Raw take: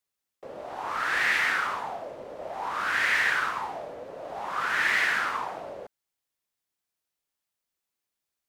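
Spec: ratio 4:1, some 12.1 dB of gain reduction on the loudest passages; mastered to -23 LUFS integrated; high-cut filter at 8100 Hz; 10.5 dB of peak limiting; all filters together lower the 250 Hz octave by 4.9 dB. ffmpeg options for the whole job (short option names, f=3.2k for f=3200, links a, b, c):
-af "lowpass=8.1k,equalizer=f=250:t=o:g=-7,acompressor=threshold=-36dB:ratio=4,volume=20dB,alimiter=limit=-15.5dB:level=0:latency=1"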